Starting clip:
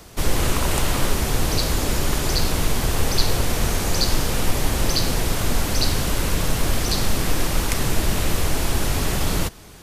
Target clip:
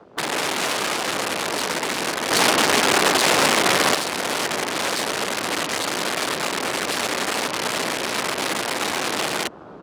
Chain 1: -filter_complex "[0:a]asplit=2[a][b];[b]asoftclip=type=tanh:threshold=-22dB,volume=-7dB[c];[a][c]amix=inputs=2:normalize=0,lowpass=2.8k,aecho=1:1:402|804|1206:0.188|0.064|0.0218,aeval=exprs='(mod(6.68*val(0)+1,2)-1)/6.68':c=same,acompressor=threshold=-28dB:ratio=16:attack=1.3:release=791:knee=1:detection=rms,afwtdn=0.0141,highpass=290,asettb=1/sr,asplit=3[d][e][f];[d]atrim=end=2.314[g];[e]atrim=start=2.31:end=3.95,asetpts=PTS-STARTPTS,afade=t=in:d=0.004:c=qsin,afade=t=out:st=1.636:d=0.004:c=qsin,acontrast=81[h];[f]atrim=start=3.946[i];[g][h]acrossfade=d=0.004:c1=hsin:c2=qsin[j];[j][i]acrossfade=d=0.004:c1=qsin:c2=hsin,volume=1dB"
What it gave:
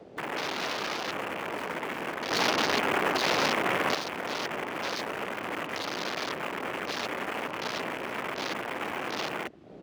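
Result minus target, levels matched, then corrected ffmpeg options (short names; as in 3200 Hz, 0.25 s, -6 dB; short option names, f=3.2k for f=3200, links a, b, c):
compressor: peak gain reduction +8 dB
-filter_complex "[0:a]asplit=2[a][b];[b]asoftclip=type=tanh:threshold=-22dB,volume=-7dB[c];[a][c]amix=inputs=2:normalize=0,lowpass=2.8k,aecho=1:1:402|804|1206:0.188|0.064|0.0218,aeval=exprs='(mod(6.68*val(0)+1,2)-1)/6.68':c=same,acompressor=threshold=-19.5dB:ratio=16:attack=1.3:release=791:knee=1:detection=rms,afwtdn=0.0141,highpass=290,asettb=1/sr,asplit=3[d][e][f];[d]atrim=end=2.314[g];[e]atrim=start=2.31:end=3.95,asetpts=PTS-STARTPTS,afade=t=in:d=0.004:c=qsin,afade=t=out:st=1.636:d=0.004:c=qsin,acontrast=81[h];[f]atrim=start=3.946[i];[g][h]acrossfade=d=0.004:c1=hsin:c2=qsin[j];[j][i]acrossfade=d=0.004:c1=qsin:c2=hsin,volume=1dB"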